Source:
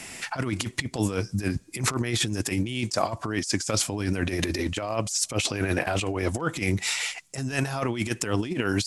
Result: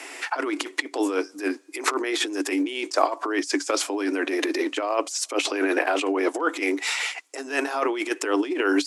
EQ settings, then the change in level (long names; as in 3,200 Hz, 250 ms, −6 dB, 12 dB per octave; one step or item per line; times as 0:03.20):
Chebyshev high-pass with heavy ripple 280 Hz, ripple 3 dB
high-shelf EQ 4,100 Hz −8.5 dB
+7.0 dB